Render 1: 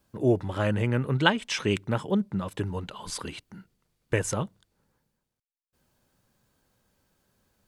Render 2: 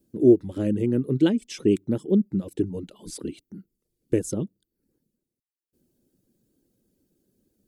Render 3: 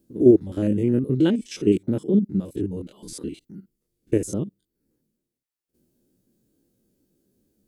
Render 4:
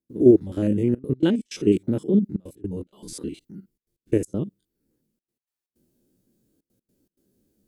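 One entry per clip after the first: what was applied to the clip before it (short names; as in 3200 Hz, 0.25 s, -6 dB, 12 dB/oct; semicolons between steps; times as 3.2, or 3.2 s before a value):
reverb removal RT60 0.55 s; EQ curve 110 Hz 0 dB, 330 Hz +14 dB, 980 Hz -16 dB, 11000 Hz +3 dB; gain -2.5 dB
stepped spectrum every 50 ms; gain +3 dB
step gate ".xxxxxxxxx.x.xx" 159 bpm -24 dB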